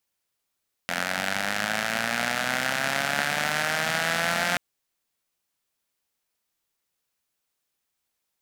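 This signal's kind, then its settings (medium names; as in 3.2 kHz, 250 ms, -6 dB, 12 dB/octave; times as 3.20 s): four-cylinder engine model, changing speed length 3.68 s, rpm 2600, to 5300, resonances 220/700/1500 Hz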